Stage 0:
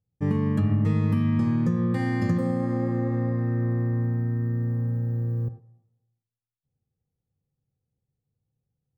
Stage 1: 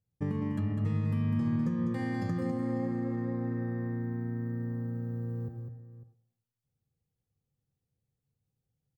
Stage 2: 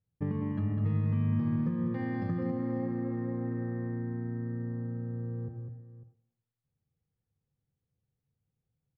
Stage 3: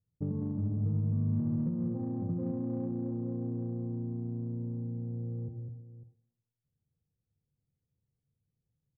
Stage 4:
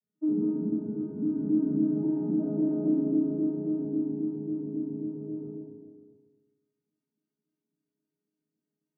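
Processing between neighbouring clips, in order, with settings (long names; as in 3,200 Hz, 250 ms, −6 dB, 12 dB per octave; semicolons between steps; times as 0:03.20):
downward compressor 3 to 1, threshold −27 dBFS, peak gain reduction 7 dB; on a send: multi-tap delay 201/549 ms −6.5/−16.5 dB; on the sum: level −3 dB
high-frequency loss of the air 310 metres; on a send at −21 dB: convolution reverb RT60 0.75 s, pre-delay 3 ms
Gaussian smoothing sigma 12 samples; in parallel at −9.5 dB: soft clipping −36 dBFS, distortion −8 dB; on the sum: level −2 dB
vocoder with an arpeggio as carrier bare fifth, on G#3, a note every 135 ms; feedback delay network reverb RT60 1.4 s, low-frequency decay 1×, high-frequency decay 0.65×, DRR −10 dB; level −5 dB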